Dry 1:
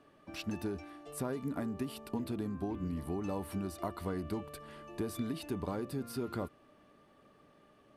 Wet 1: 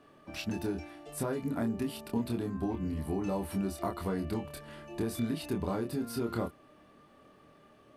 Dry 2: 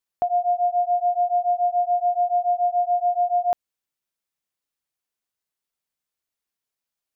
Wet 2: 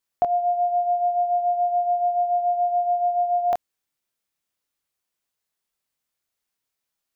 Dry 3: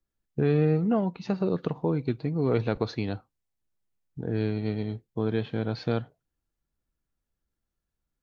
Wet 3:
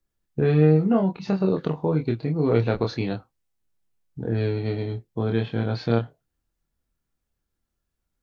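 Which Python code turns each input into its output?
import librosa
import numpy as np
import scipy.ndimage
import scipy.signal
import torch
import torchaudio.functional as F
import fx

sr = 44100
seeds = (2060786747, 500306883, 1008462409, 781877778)

y = fx.doubler(x, sr, ms=26.0, db=-4.0)
y = F.gain(torch.from_numpy(y), 2.5).numpy()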